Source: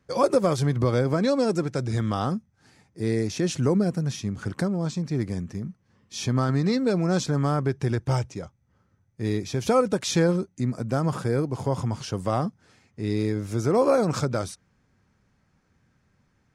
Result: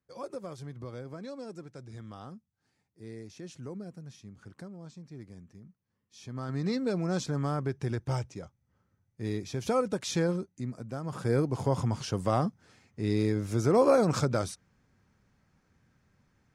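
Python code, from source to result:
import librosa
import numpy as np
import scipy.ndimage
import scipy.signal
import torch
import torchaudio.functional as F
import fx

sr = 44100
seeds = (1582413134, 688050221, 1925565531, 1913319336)

y = fx.gain(x, sr, db=fx.line((6.22, -19.0), (6.66, -7.0), (10.32, -7.0), (11.04, -13.0), (11.31, -2.0)))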